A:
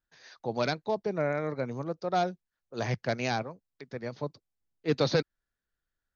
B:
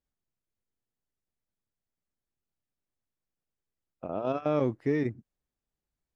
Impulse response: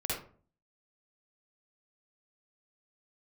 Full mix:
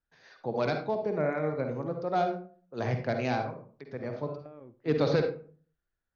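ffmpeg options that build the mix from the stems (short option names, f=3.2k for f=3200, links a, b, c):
-filter_complex "[0:a]aemphasis=mode=reproduction:type=75fm,volume=-4dB,asplit=2[a][b];[b]volume=-6dB[c];[1:a]lowpass=2k,acompressor=threshold=-37dB:ratio=6,volume=-9.5dB,asplit=2[d][e];[e]volume=-20dB[f];[2:a]atrim=start_sample=2205[g];[c][f]amix=inputs=2:normalize=0[h];[h][g]afir=irnorm=-1:irlink=0[i];[a][d][i]amix=inputs=3:normalize=0"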